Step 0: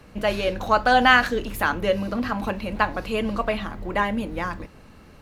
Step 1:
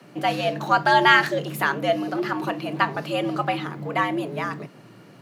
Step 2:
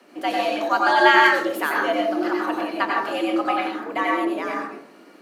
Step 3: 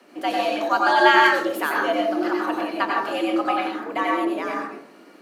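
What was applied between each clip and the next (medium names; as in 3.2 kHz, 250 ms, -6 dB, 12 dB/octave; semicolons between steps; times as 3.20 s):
frequency shift +110 Hz
steep high-pass 240 Hz 36 dB/octave; plate-style reverb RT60 0.53 s, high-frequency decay 0.55×, pre-delay 80 ms, DRR -2.5 dB; trim -2.5 dB
dynamic bell 2 kHz, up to -4 dB, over -37 dBFS, Q 5.3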